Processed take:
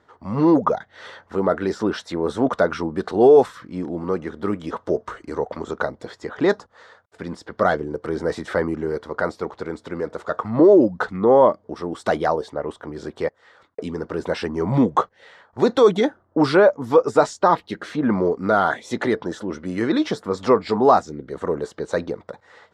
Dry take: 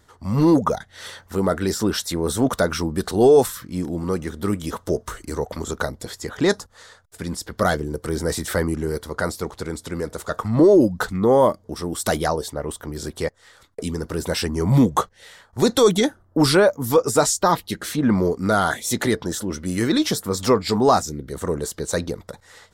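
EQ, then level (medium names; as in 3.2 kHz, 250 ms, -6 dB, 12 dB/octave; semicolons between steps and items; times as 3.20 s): high-pass 540 Hz 6 dB/octave; low-pass 1 kHz 6 dB/octave; distance through air 71 m; +6.5 dB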